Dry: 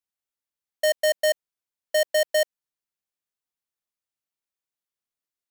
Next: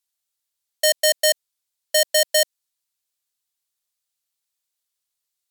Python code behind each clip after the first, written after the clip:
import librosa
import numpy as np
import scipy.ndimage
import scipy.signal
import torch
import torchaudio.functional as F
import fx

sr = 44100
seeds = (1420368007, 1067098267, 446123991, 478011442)

y = fx.graphic_eq_10(x, sr, hz=(250, 4000, 8000, 16000), db=(-11, 7, 6, 9))
y = y * librosa.db_to_amplitude(2.0)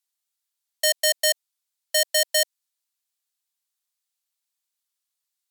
y = scipy.signal.sosfilt(scipy.signal.butter(4, 640.0, 'highpass', fs=sr, output='sos'), x)
y = y * librosa.db_to_amplitude(-2.0)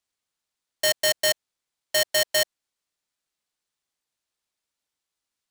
y = fx.high_shelf(x, sr, hz=11000.0, db=-7.5)
y = fx.sample_hold(y, sr, seeds[0], rate_hz=17000.0, jitter_pct=0)